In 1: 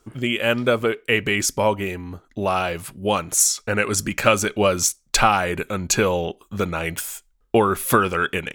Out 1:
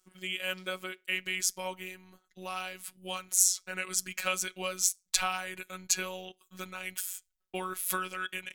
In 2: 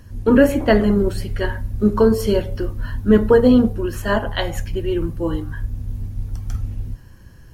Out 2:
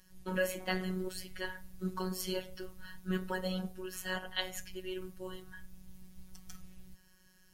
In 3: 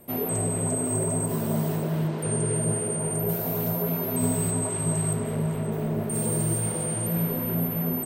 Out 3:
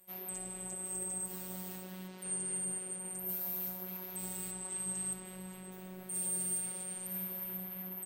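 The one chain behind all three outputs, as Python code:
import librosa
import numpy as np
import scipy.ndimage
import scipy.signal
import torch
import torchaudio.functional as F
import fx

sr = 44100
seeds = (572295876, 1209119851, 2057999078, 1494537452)

y = fx.tilt_shelf(x, sr, db=-8.0, hz=1400.0)
y = fx.robotise(y, sr, hz=185.0)
y = y * librosa.db_to_amplitude(-12.0)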